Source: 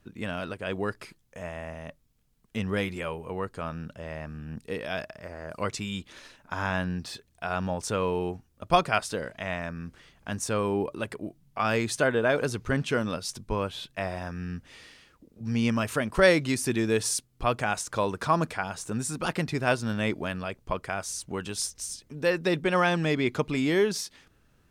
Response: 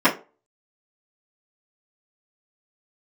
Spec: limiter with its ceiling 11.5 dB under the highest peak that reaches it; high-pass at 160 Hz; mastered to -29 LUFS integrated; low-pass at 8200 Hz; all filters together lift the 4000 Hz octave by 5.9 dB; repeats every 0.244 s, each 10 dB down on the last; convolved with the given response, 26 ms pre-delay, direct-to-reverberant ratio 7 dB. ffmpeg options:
-filter_complex "[0:a]highpass=160,lowpass=8.2k,equalizer=f=4k:t=o:g=8,alimiter=limit=-15dB:level=0:latency=1,aecho=1:1:244|488|732|976:0.316|0.101|0.0324|0.0104,asplit=2[a][b];[1:a]atrim=start_sample=2205,adelay=26[c];[b][c]afir=irnorm=-1:irlink=0,volume=-28.5dB[d];[a][d]amix=inputs=2:normalize=0,volume=0.5dB"

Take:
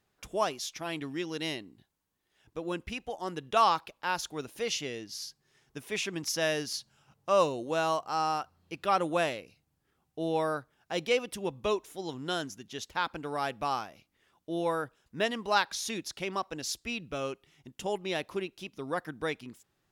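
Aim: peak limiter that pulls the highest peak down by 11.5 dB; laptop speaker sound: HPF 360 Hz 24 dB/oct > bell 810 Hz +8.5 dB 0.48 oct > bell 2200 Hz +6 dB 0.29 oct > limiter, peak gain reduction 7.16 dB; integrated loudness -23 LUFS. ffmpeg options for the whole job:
-af "alimiter=limit=-23.5dB:level=0:latency=1,highpass=f=360:w=0.5412,highpass=f=360:w=1.3066,equalizer=f=810:t=o:w=0.48:g=8.5,equalizer=f=2.2k:t=o:w=0.29:g=6,volume=14dB,alimiter=limit=-11dB:level=0:latency=1"

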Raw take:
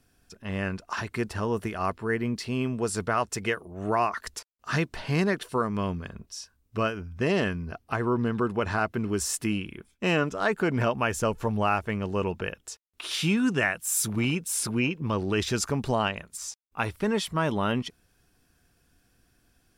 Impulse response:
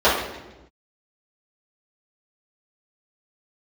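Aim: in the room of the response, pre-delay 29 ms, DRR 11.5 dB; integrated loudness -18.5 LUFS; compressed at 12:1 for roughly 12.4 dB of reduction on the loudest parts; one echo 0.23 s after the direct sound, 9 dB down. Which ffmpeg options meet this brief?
-filter_complex "[0:a]acompressor=threshold=-33dB:ratio=12,aecho=1:1:230:0.355,asplit=2[a][b];[1:a]atrim=start_sample=2205,adelay=29[c];[b][c]afir=irnorm=-1:irlink=0,volume=-35dB[d];[a][d]amix=inputs=2:normalize=0,volume=19dB"

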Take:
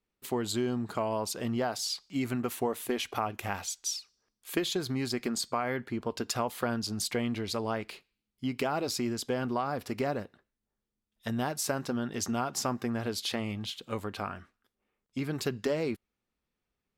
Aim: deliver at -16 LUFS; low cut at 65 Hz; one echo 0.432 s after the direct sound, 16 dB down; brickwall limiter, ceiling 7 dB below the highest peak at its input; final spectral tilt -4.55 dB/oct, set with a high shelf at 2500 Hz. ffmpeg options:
-af "highpass=65,highshelf=f=2.5k:g=-4,alimiter=limit=-22.5dB:level=0:latency=1,aecho=1:1:432:0.158,volume=19dB"

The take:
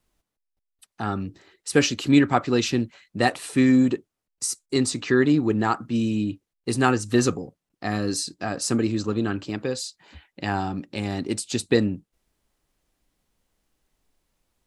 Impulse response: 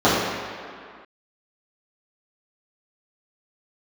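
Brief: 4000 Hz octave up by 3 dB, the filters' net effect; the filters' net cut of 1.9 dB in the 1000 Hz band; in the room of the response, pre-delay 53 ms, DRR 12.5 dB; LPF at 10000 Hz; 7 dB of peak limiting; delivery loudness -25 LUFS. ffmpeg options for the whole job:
-filter_complex "[0:a]lowpass=10k,equalizer=f=1k:t=o:g=-3,equalizer=f=4k:t=o:g=4,alimiter=limit=-11dB:level=0:latency=1,asplit=2[a][b];[1:a]atrim=start_sample=2205,adelay=53[c];[b][c]afir=irnorm=-1:irlink=0,volume=-37.5dB[d];[a][d]amix=inputs=2:normalize=0,volume=-0.5dB"

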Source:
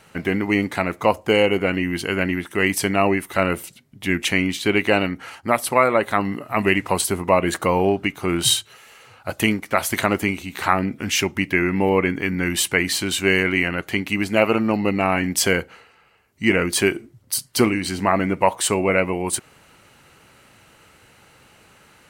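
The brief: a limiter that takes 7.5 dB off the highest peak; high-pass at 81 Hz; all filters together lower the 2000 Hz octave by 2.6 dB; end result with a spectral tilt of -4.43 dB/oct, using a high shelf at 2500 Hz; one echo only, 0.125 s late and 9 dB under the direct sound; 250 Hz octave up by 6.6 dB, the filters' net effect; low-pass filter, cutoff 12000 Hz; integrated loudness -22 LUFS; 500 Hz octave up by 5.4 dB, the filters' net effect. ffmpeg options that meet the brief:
-af "highpass=81,lowpass=12k,equalizer=f=250:t=o:g=7.5,equalizer=f=500:t=o:g=4.5,equalizer=f=2k:t=o:g=-5,highshelf=f=2.5k:g=3.5,alimiter=limit=-6dB:level=0:latency=1,aecho=1:1:125:0.355,volume=-3.5dB"

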